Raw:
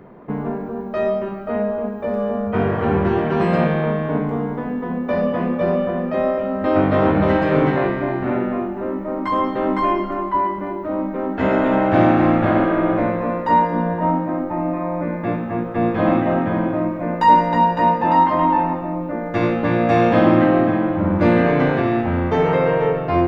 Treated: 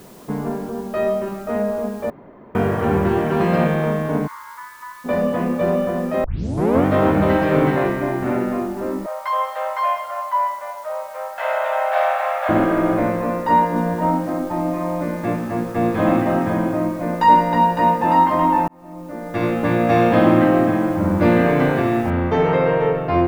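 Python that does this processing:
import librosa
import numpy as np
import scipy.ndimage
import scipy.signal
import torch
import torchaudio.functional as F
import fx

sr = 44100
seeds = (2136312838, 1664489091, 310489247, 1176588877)

y = fx.brickwall_bandpass(x, sr, low_hz=870.0, high_hz=2300.0, at=(4.26, 5.04), fade=0.02)
y = fx.steep_highpass(y, sr, hz=530.0, slope=96, at=(9.06, 12.49))
y = fx.echo_crushed(y, sr, ms=188, feedback_pct=35, bits=6, wet_db=-15.0, at=(13.57, 16.54))
y = fx.noise_floor_step(y, sr, seeds[0], at_s=22.1, before_db=-50, after_db=-68, tilt_db=0.0)
y = fx.edit(y, sr, fx.room_tone_fill(start_s=2.1, length_s=0.45),
    fx.tape_start(start_s=6.24, length_s=0.62),
    fx.fade_in_span(start_s=18.68, length_s=0.94), tone=tone)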